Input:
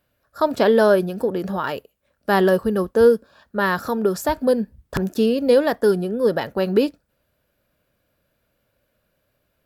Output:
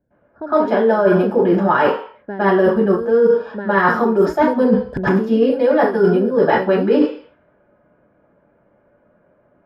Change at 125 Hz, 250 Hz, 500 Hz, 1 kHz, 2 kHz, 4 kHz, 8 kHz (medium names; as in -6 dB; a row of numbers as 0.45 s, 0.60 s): +5.5 dB, +5.5 dB, +3.5 dB, +6.5 dB, +5.0 dB, -3.0 dB, under -10 dB